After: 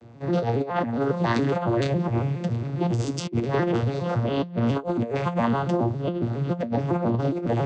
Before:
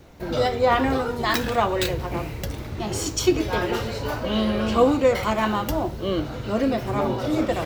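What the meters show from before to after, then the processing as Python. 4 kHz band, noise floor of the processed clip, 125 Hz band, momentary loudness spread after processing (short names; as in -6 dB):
-9.5 dB, -35 dBFS, +5.5 dB, 4 LU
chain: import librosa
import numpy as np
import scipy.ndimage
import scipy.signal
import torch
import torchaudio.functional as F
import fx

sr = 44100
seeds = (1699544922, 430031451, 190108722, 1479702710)

y = fx.vocoder_arp(x, sr, chord='minor triad', root=46, every_ms=138)
y = fx.over_compress(y, sr, threshold_db=-25.0, ratio=-0.5)
y = F.gain(torch.from_numpy(y), 2.0).numpy()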